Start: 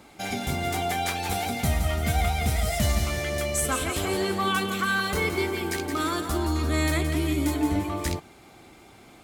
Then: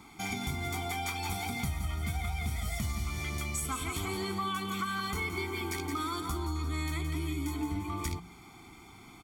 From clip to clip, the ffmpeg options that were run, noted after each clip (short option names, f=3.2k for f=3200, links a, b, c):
-af "aecho=1:1:0.9:0.89,bandreject=f=58.48:t=h:w=4,bandreject=f=116.96:t=h:w=4,bandreject=f=175.44:t=h:w=4,bandreject=f=233.92:t=h:w=4,acompressor=threshold=-28dB:ratio=4,volume=-4dB"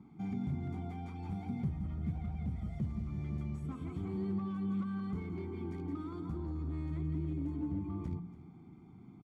-af "aeval=exprs='0.0398*(abs(mod(val(0)/0.0398+3,4)-2)-1)':c=same,bandpass=f=170:t=q:w=1.8:csg=0,aecho=1:1:285:0.141,volume=5.5dB"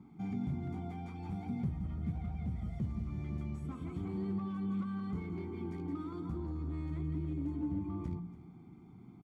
-filter_complex "[0:a]asplit=2[a][b];[b]adelay=17,volume=-13dB[c];[a][c]amix=inputs=2:normalize=0"